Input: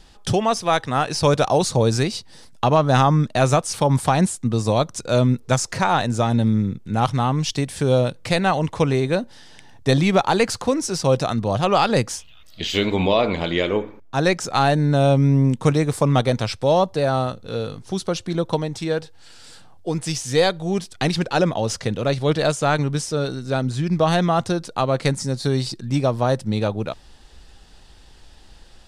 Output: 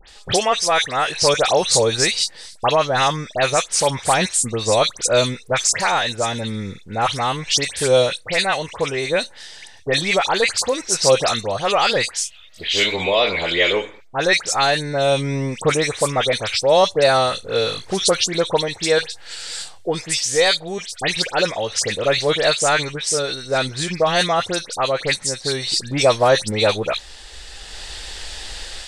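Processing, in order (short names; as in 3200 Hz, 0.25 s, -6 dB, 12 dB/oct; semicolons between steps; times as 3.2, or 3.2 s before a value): graphic EQ 125/250/500/2000/4000/8000 Hz -7/-7/+5/+9/+7/+11 dB; AGC; dispersion highs, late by 86 ms, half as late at 2500 Hz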